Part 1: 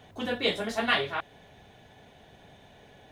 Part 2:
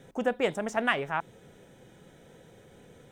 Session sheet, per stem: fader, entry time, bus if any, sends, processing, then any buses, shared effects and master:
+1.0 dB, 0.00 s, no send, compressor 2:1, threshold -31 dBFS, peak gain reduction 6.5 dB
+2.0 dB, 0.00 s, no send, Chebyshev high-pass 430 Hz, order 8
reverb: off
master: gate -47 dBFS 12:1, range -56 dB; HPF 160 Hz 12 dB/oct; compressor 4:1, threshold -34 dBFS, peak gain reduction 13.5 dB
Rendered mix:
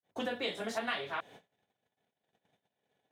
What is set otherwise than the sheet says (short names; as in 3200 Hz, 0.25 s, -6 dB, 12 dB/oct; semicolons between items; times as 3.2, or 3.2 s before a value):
stem 1: missing compressor 2:1, threshold -31 dBFS, peak gain reduction 6.5 dB; stem 2 +2.0 dB -> -5.0 dB